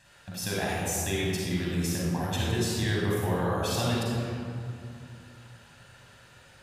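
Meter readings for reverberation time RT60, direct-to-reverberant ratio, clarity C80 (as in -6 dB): 2.4 s, -5.5 dB, -0.5 dB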